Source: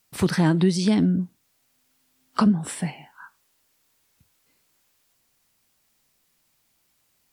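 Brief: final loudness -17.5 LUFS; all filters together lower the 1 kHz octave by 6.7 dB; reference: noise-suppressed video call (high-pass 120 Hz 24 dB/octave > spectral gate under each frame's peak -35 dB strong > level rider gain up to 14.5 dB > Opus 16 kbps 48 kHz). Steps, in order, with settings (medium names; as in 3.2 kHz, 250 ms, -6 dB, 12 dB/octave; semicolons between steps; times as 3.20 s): high-pass 120 Hz 24 dB/octave; peaking EQ 1 kHz -8.5 dB; spectral gate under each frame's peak -35 dB strong; level rider gain up to 14.5 dB; trim +5.5 dB; Opus 16 kbps 48 kHz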